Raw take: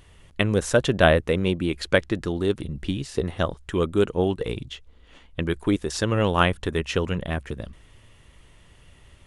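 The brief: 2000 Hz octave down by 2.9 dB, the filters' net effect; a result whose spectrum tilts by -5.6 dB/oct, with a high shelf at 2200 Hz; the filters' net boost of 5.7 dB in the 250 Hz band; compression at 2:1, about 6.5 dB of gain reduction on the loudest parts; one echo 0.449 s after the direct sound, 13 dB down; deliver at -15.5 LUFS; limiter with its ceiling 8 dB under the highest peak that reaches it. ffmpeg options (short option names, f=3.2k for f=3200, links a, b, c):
-af "equalizer=f=250:t=o:g=8,equalizer=f=2k:t=o:g=-7,highshelf=f=2.2k:g=5,acompressor=threshold=-23dB:ratio=2,alimiter=limit=-15.5dB:level=0:latency=1,aecho=1:1:449:0.224,volume=12.5dB"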